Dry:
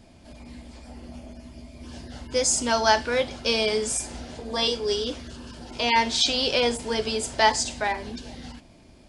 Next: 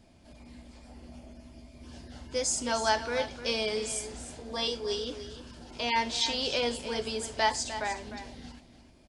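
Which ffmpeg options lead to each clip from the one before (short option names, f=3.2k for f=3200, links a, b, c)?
-af "aecho=1:1:303:0.266,volume=-7dB"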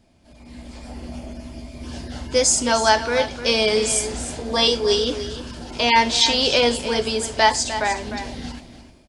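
-af "dynaudnorm=f=220:g=5:m=14dB"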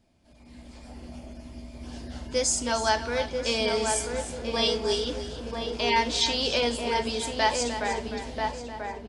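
-filter_complex "[0:a]asplit=2[a][b];[b]adelay=988,lowpass=f=1.4k:p=1,volume=-3.5dB,asplit=2[c][d];[d]adelay=988,lowpass=f=1.4k:p=1,volume=0.36,asplit=2[e][f];[f]adelay=988,lowpass=f=1.4k:p=1,volume=0.36,asplit=2[g][h];[h]adelay=988,lowpass=f=1.4k:p=1,volume=0.36,asplit=2[i][j];[j]adelay=988,lowpass=f=1.4k:p=1,volume=0.36[k];[a][c][e][g][i][k]amix=inputs=6:normalize=0,volume=-8dB"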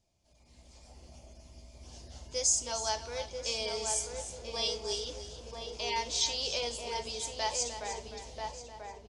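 -af "equalizer=f=250:t=o:w=0.67:g=-12,equalizer=f=1.6k:t=o:w=0.67:g=-8,equalizer=f=6.3k:t=o:w=0.67:g=10,volume=-8.5dB"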